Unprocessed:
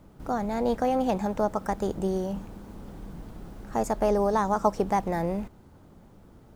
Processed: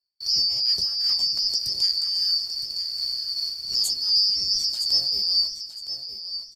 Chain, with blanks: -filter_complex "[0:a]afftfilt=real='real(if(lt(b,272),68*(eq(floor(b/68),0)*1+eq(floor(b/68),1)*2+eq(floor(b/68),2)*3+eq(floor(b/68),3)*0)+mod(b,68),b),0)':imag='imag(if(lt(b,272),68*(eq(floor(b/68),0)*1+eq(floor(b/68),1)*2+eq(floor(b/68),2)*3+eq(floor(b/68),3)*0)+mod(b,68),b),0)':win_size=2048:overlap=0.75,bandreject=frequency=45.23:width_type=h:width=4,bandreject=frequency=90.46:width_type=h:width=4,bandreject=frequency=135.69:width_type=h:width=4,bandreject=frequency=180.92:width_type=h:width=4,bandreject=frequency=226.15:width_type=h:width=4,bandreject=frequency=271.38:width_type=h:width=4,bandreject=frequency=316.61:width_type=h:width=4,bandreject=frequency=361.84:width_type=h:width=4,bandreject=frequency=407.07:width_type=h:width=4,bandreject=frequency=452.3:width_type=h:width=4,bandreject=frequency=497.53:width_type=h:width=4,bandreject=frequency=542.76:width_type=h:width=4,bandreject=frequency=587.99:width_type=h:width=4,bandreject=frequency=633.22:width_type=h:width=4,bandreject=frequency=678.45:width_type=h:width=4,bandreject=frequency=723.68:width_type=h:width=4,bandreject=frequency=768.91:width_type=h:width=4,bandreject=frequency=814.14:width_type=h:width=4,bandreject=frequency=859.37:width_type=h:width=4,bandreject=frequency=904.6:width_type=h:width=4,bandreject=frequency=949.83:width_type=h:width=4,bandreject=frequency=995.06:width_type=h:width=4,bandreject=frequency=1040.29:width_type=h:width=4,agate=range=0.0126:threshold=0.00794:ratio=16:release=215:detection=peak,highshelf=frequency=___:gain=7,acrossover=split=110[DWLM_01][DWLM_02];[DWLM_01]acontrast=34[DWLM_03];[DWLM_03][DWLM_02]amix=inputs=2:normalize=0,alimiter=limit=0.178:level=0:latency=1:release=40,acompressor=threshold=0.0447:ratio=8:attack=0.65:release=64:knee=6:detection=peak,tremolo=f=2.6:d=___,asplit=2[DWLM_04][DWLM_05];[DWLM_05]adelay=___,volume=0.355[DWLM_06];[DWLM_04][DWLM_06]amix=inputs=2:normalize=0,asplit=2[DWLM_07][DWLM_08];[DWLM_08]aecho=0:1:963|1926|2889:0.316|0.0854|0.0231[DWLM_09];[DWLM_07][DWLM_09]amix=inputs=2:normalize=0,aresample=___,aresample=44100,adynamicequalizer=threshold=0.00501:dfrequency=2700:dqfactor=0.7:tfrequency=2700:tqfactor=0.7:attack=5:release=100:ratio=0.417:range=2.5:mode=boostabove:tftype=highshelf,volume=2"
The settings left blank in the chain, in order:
6000, 0.48, 15, 32000